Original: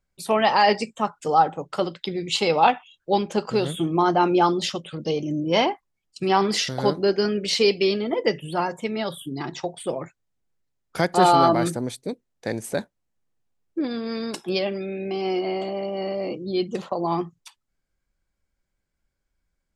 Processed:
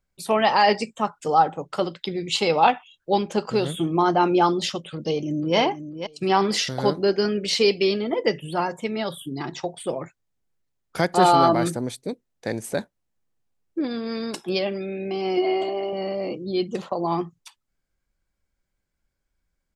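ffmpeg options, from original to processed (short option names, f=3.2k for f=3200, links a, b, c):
-filter_complex "[0:a]asplit=2[a][b];[b]afade=t=in:st=4.93:d=0.01,afade=t=out:st=5.57:d=0.01,aecho=0:1:490|980:0.316228|0.0474342[c];[a][c]amix=inputs=2:normalize=0,asettb=1/sr,asplit=3[d][e][f];[d]atrim=end=15.374[g];[e]atrim=start=15.37:end=15.93,asetpts=PTS-STARTPTS,afade=t=in:d=0.004:c=qsin,afade=t=out:st=0.556:d=0.004:c=qsin,aecho=1:1:2.8:0.79,atrim=end_sample=24696[h];[f]atrim=start=15.926[i];[g][h]acrossfade=d=0.004:c1=hsin:c2=qsin[j];[j][i]acrossfade=d=0.004:c1=qsin:c2=hsin"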